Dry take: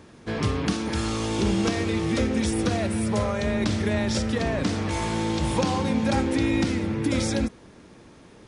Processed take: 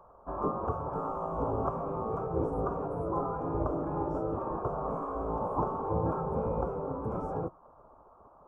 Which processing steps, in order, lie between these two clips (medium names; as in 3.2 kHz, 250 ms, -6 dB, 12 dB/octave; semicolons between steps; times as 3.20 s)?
elliptic low-pass 1.2 kHz, stop band 40 dB; spectral gate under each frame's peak -10 dB weak; trim +3 dB